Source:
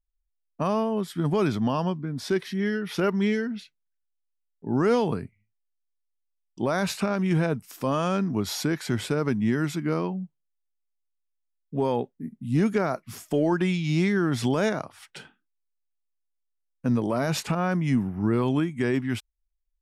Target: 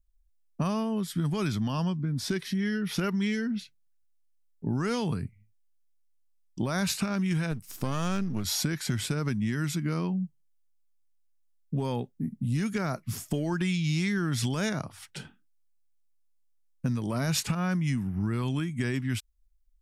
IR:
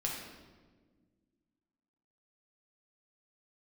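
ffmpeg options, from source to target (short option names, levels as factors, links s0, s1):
-filter_complex "[0:a]asettb=1/sr,asplit=3[s0][s1][s2];[s0]atrim=end=7.514[s3];[s1]atrim=start=7.51:end=8.45,asetpts=PTS-STARTPTS,afade=t=in:d=0.004:c=qsin,afade=t=out:st=0.936:d=0.004:c=qsin,aeval=exprs='if(lt(val(0),0),0.447*val(0),val(0))':c=same[s4];[s2]atrim=start=8.446[s5];[s3][s4]acrossfade=d=0.004:c1=hsin:c2=qsin[s6];[s6][s5]acrossfade=d=0.004:c1=qsin:c2=hsin,bass=f=250:g=14,treble=f=4000:g=6,acrossover=split=1200[s7][s8];[s7]acompressor=threshold=0.0562:ratio=6[s9];[s9][s8]amix=inputs=2:normalize=0,volume=0.794"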